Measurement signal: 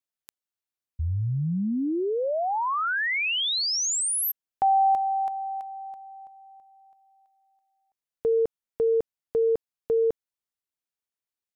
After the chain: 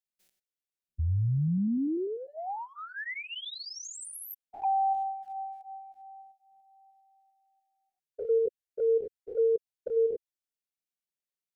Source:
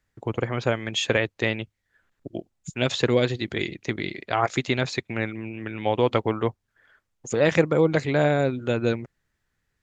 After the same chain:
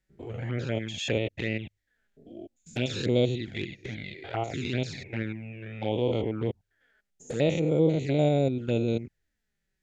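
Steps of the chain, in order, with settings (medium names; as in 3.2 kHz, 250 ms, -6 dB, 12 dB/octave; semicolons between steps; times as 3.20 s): spectrogram pixelated in time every 100 ms; touch-sensitive flanger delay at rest 5.4 ms, full sweep at -21.5 dBFS; peaking EQ 1.1 kHz -13 dB 0.59 oct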